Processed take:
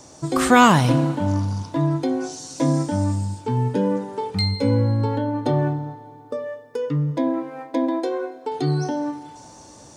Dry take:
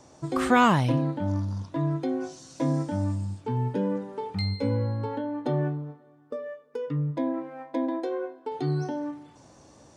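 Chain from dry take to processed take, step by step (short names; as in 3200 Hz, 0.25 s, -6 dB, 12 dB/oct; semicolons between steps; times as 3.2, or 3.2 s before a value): tone controls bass 0 dB, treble +8 dB; FDN reverb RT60 2.5 s, low-frequency decay 1.1×, high-frequency decay 1×, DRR 15 dB; gain +6 dB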